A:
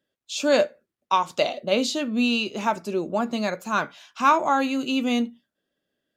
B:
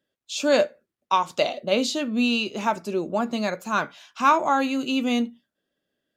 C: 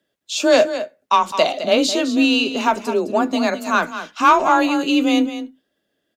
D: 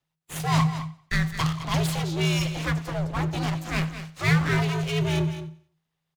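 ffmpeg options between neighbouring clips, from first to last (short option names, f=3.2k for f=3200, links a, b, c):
-af anull
-filter_complex "[0:a]acontrast=68,afreqshift=26,asplit=2[a][b];[b]aecho=0:1:210:0.266[c];[a][c]amix=inputs=2:normalize=0"
-af "aeval=exprs='abs(val(0))':c=same,afreqshift=-160,aecho=1:1:92|184|276:0.126|0.0504|0.0201,volume=-7.5dB"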